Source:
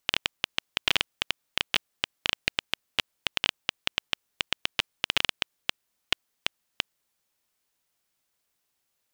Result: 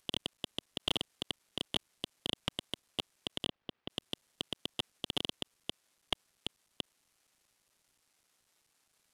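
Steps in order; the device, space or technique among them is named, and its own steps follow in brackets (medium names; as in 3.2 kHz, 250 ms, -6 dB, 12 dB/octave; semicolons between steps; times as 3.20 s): early wireless headset (high-pass 220 Hz 24 dB/octave; CVSD coder 64 kbps); 3.48–3.89 s: distance through air 330 m; trim +6 dB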